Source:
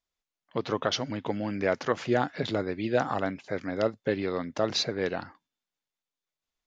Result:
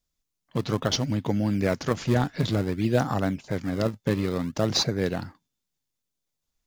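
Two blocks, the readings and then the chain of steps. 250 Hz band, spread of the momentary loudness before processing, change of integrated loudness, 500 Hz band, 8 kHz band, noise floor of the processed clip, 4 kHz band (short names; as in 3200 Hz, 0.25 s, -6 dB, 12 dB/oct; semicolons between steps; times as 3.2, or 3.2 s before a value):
+5.5 dB, 6 LU, +3.5 dB, 0.0 dB, n/a, -83 dBFS, +3.0 dB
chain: tone controls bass +12 dB, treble +10 dB; in parallel at -10.5 dB: decimation with a swept rate 35×, swing 160% 0.56 Hz; on the sum: gain -2 dB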